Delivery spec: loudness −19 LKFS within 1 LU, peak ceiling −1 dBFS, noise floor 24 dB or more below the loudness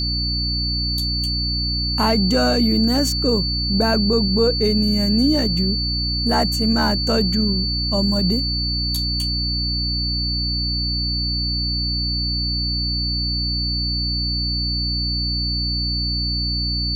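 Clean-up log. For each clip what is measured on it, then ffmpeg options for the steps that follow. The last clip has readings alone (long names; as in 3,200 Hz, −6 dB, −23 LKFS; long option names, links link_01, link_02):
mains hum 60 Hz; hum harmonics up to 300 Hz; level of the hum −22 dBFS; interfering tone 4,500 Hz; level of the tone −22 dBFS; integrated loudness −19.5 LKFS; sample peak −6.0 dBFS; target loudness −19.0 LKFS
→ -af "bandreject=frequency=60:width_type=h:width=4,bandreject=frequency=120:width_type=h:width=4,bandreject=frequency=180:width_type=h:width=4,bandreject=frequency=240:width_type=h:width=4,bandreject=frequency=300:width_type=h:width=4"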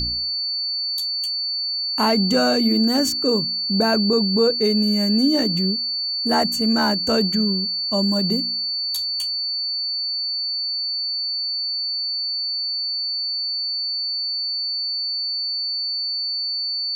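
mains hum none found; interfering tone 4,500 Hz; level of the tone −22 dBFS
→ -af "bandreject=frequency=4500:width=30"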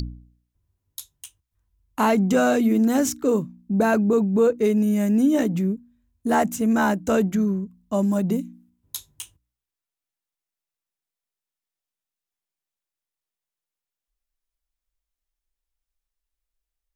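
interfering tone none found; integrated loudness −21.5 LKFS; sample peak −9.0 dBFS; target loudness −19.0 LKFS
→ -af "volume=2.5dB"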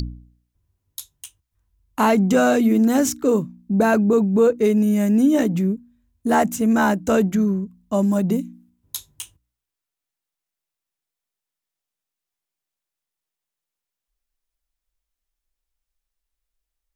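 integrated loudness −19.0 LKFS; sample peak −6.5 dBFS; background noise floor −86 dBFS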